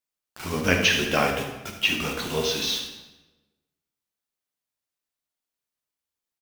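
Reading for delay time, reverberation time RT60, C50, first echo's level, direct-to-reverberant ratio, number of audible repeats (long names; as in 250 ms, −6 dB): 76 ms, 1.1 s, 4.5 dB, −10.0 dB, 1.5 dB, 1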